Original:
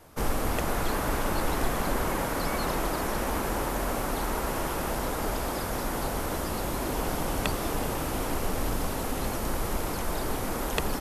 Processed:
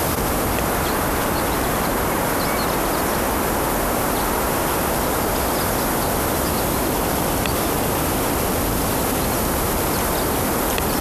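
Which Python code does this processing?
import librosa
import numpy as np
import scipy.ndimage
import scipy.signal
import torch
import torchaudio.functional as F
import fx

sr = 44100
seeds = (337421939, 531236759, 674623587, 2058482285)

y = scipy.signal.sosfilt(scipy.signal.butter(2, 60.0, 'highpass', fs=sr, output='sos'), x)
y = fx.high_shelf(y, sr, hz=11000.0, db=5.0)
y = fx.env_flatten(y, sr, amount_pct=100)
y = F.gain(torch.from_numpy(y), 4.5).numpy()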